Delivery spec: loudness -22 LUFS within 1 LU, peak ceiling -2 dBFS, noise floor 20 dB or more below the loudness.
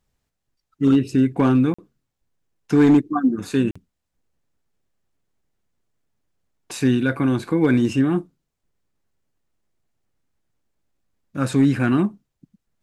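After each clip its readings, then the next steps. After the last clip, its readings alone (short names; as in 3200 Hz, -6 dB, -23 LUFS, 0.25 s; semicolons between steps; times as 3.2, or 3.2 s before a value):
clipped 0.6%; flat tops at -9.0 dBFS; dropouts 2; longest dropout 45 ms; loudness -19.5 LUFS; peak -9.0 dBFS; loudness target -22.0 LUFS
-> clip repair -9 dBFS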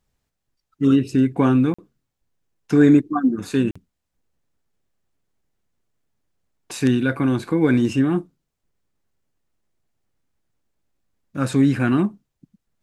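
clipped 0.0%; dropouts 2; longest dropout 45 ms
-> interpolate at 1.74/3.71, 45 ms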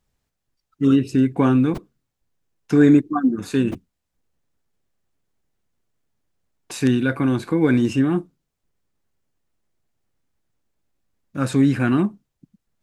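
dropouts 0; loudness -19.5 LUFS; peak -3.5 dBFS; loudness target -22.0 LUFS
-> gain -2.5 dB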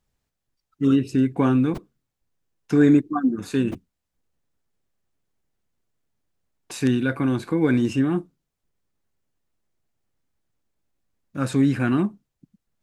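loudness -22.0 LUFS; peak -6.0 dBFS; noise floor -81 dBFS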